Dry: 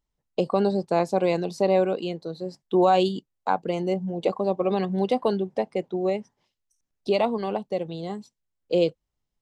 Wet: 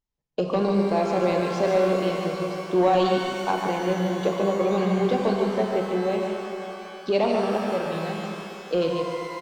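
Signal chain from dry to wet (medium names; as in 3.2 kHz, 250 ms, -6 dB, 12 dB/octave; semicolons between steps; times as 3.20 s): on a send: delay 146 ms -6 dB; on the sum: waveshaping leveller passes 1; resampled via 16 kHz; pitch-shifted reverb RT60 2.9 s, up +12 st, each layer -8 dB, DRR 2.5 dB; trim -4.5 dB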